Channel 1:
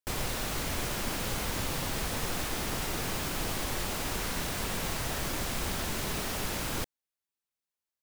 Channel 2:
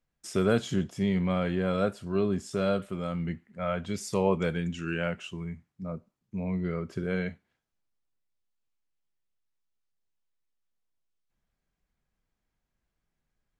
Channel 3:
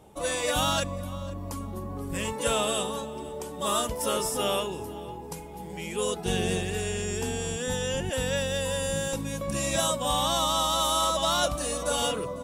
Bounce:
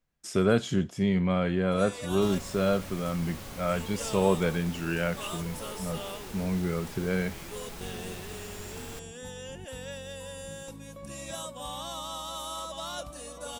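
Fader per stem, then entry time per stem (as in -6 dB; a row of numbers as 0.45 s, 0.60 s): -10.5 dB, +1.5 dB, -12.0 dB; 2.15 s, 0.00 s, 1.55 s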